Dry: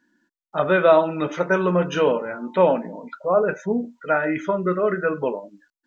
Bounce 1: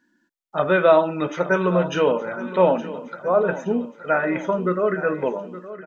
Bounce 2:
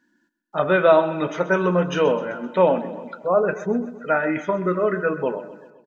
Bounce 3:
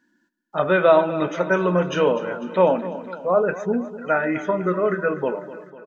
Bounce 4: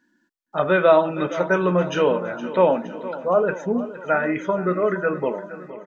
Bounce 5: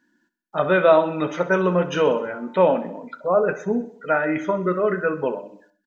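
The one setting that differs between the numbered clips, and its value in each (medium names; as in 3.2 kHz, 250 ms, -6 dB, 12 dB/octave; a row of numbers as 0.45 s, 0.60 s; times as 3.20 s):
feedback delay, time: 867 ms, 129 ms, 249 ms, 466 ms, 64 ms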